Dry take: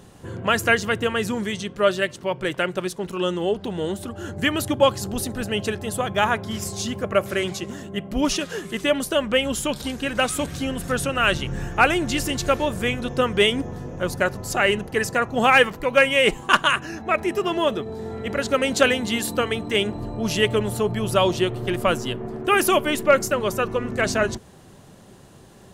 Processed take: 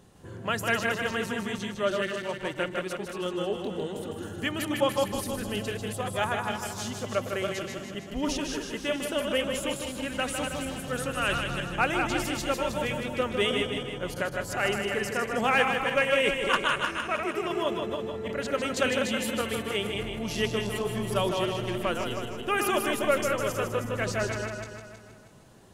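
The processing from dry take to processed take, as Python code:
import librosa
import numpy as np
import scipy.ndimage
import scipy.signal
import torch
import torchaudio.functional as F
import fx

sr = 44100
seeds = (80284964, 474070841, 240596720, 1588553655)

y = fx.reverse_delay_fb(x, sr, ms=159, feedback_pct=57, wet_db=-5.0)
y = y + 10.0 ** (-6.5 / 20.0) * np.pad(y, (int(154 * sr / 1000.0), 0))[:len(y)]
y = y * librosa.db_to_amplitude(-9.0)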